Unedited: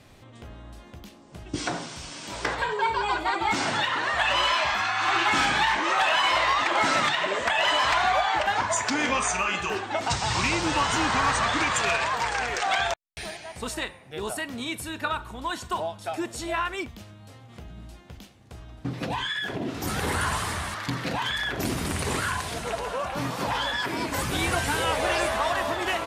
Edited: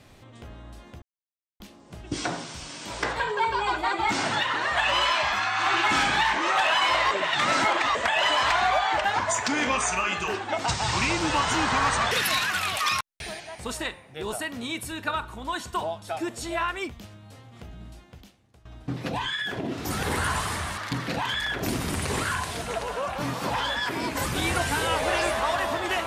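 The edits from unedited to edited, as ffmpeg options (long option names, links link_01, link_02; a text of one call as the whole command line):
ffmpeg -i in.wav -filter_complex "[0:a]asplit=7[link_01][link_02][link_03][link_04][link_05][link_06][link_07];[link_01]atrim=end=1.02,asetpts=PTS-STARTPTS,afade=type=out:start_time=1.016:duration=0.004:curve=hsin,apad=pad_dur=0.58[link_08];[link_02]atrim=start=1.02:end=6.532,asetpts=PTS-STARTPTS,afade=type=in:duration=0.004:curve=hsin[link_09];[link_03]atrim=start=6.528:end=7.372,asetpts=PTS-STARTPTS,areverse[link_10];[link_04]atrim=start=7.368:end=11.534[link_11];[link_05]atrim=start=11.53:end=13.04,asetpts=PTS-STARTPTS,asetrate=69237,aresample=44100[link_12];[link_06]atrim=start=13.036:end=18.62,asetpts=PTS-STARTPTS,afade=type=out:start_time=4.784:duration=0.8:silence=0.125893[link_13];[link_07]atrim=start=18.62,asetpts=PTS-STARTPTS,afade=type=in:duration=0.004:curve=hsin:silence=0.125893[link_14];[link_08][link_09]concat=n=2:v=0:a=1[link_15];[link_15][link_10]acrossfade=duration=0.004:curve1=hsin:curve2=hsin[link_16];[link_16][link_11]acrossfade=duration=0.004:curve1=hsin:curve2=hsin[link_17];[link_17][link_12]acrossfade=duration=0.004:curve1=hsin:curve2=hsin[link_18];[link_13][link_14]concat=n=2:v=0:a=1[link_19];[link_18][link_19]acrossfade=duration=0.004:curve1=hsin:curve2=hsin" out.wav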